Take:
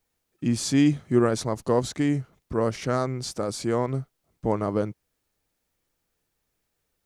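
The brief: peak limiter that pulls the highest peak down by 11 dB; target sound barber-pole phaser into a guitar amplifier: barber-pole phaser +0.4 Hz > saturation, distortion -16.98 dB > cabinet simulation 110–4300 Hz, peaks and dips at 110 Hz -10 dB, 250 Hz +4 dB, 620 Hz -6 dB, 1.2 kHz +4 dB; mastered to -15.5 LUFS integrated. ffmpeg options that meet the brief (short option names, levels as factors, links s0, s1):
-filter_complex "[0:a]alimiter=limit=0.1:level=0:latency=1,asplit=2[s0][s1];[s1]afreqshift=0.4[s2];[s0][s2]amix=inputs=2:normalize=1,asoftclip=threshold=0.0473,highpass=110,equalizer=f=110:t=q:w=4:g=-10,equalizer=f=250:t=q:w=4:g=4,equalizer=f=620:t=q:w=4:g=-6,equalizer=f=1200:t=q:w=4:g=4,lowpass=f=4300:w=0.5412,lowpass=f=4300:w=1.3066,volume=11.9"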